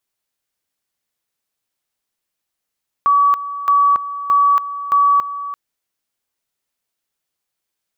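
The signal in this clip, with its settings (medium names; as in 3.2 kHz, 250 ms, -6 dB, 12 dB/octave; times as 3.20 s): two-level tone 1.14 kHz -9.5 dBFS, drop 13.5 dB, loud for 0.28 s, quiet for 0.34 s, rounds 4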